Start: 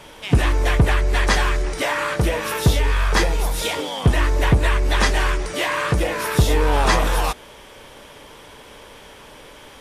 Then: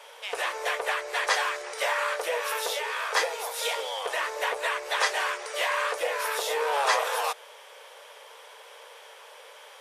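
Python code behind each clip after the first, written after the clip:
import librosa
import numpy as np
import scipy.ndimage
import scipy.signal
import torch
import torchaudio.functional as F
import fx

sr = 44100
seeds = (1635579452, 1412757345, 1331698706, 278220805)

y = scipy.signal.sosfilt(scipy.signal.ellip(4, 1.0, 50, 470.0, 'highpass', fs=sr, output='sos'), x)
y = y * librosa.db_to_amplitude(-4.0)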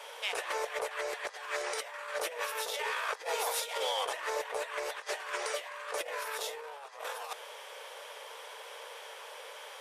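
y = fx.over_compress(x, sr, threshold_db=-33.0, ratio=-0.5)
y = y * librosa.db_to_amplitude(-3.0)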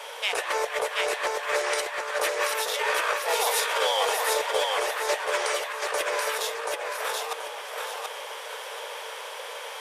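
y = fx.echo_feedback(x, sr, ms=731, feedback_pct=31, wet_db=-3)
y = y * librosa.db_to_amplitude(7.5)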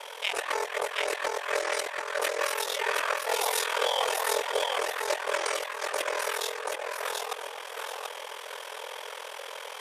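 y = x * np.sin(2.0 * np.pi * 21.0 * np.arange(len(x)) / sr)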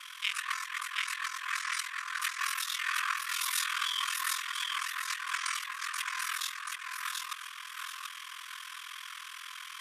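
y = fx.brickwall_highpass(x, sr, low_hz=1000.0)
y = y * librosa.db_to_amplitude(-2.0)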